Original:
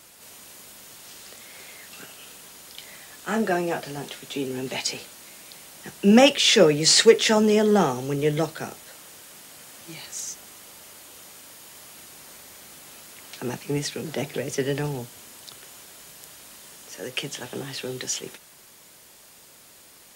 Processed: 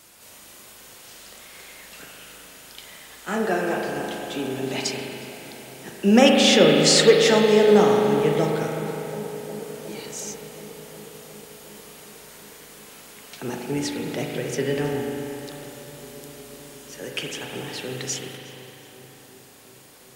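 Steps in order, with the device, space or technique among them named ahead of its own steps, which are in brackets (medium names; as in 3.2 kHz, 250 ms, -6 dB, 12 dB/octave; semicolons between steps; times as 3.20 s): dub delay into a spring reverb (filtered feedback delay 362 ms, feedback 80%, low-pass 2 kHz, level -14 dB; spring tank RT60 3.1 s, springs 38 ms, chirp 45 ms, DRR 0.5 dB); trim -1 dB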